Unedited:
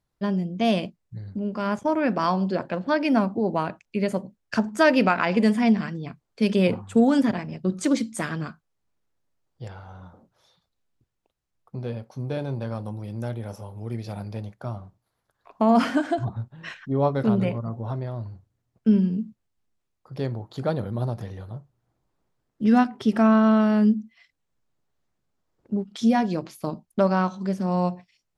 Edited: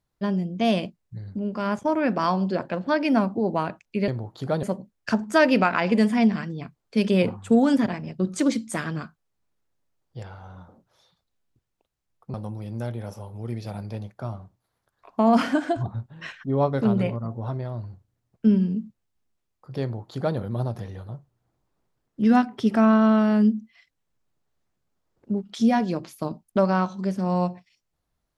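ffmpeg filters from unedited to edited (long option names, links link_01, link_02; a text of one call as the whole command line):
ffmpeg -i in.wav -filter_complex "[0:a]asplit=4[link_01][link_02][link_03][link_04];[link_01]atrim=end=4.082[link_05];[link_02]atrim=start=20.238:end=20.792[link_06];[link_03]atrim=start=4.078:end=11.792[link_07];[link_04]atrim=start=12.758[link_08];[link_05][link_06]acrossfade=duration=0.004:curve1=hsin:curve2=hsin[link_09];[link_09][link_07]acrossfade=duration=0.004:curve1=hsin:curve2=hsin[link_10];[link_10][link_08]acrossfade=duration=0.004:curve1=hsin:curve2=hsin" out.wav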